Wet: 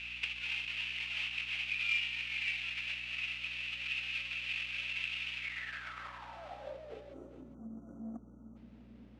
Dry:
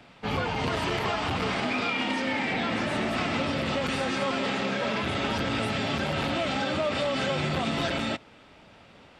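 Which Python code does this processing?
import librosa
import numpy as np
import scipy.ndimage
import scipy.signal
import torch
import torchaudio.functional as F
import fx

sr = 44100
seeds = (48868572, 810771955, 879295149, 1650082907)

y = fx.halfwave_hold(x, sr)
y = fx.spec_erase(y, sr, start_s=7.13, length_s=1.43, low_hz=1500.0, high_hz=5700.0)
y = fx.over_compress(y, sr, threshold_db=-30.0, ratio=-0.5)
y = fx.weighting(y, sr, curve='D')
y = fx.filter_sweep_bandpass(y, sr, from_hz=2600.0, to_hz=220.0, start_s=5.33, end_s=7.61, q=7.2)
y = fx.low_shelf(y, sr, hz=300.0, db=-8.0)
y = fx.add_hum(y, sr, base_hz=60, snr_db=18)
y = y + 10.0 ** (-13.0 / 20.0) * np.pad(y, (int(407 * sr / 1000.0), 0))[:len(y)]
y = fx.transformer_sat(y, sr, knee_hz=1000.0)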